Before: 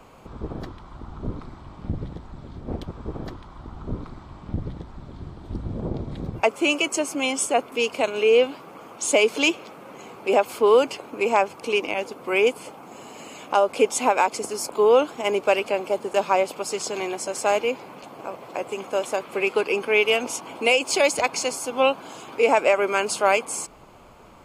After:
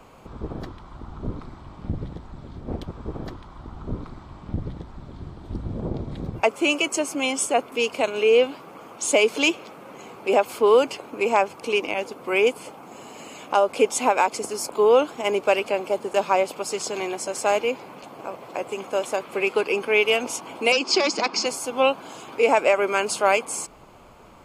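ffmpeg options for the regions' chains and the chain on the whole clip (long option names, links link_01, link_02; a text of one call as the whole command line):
ffmpeg -i in.wav -filter_complex "[0:a]asettb=1/sr,asplit=3[link_01][link_02][link_03];[link_01]atrim=end=20.724[link_04];[link_02]atrim=start=20.72:end=21.46,asetpts=PTS-STARTPTS,afade=type=in:duration=0.004:curve=qsin,afade=type=out:start_time=0.736:duration=0.004:curve=qsin,asoftclip=type=hard:threshold=-15dB,highpass=frequency=190:width=0.5412,highpass=frequency=190:width=1.3066,equalizer=frequency=210:width_type=q:width=4:gain=10,equalizer=frequency=350:width_type=q:width=4:gain=7,equalizer=frequency=580:width_type=q:width=4:gain=-5,equalizer=frequency=1200:width_type=q:width=4:gain=4,equalizer=frequency=5000:width_type=q:width=4:gain=10,lowpass=frequency=6300:width=0.5412,lowpass=frequency=6300:width=1.3066[link_05];[link_03]atrim=start=21.456[link_06];[link_04][link_05]acrossfade=duration=0.004:curve1=hsin:curve2=qsin[link_07];[link_07][link_06]acrossfade=duration=0.004:curve1=qsin:curve2=hsin" out.wav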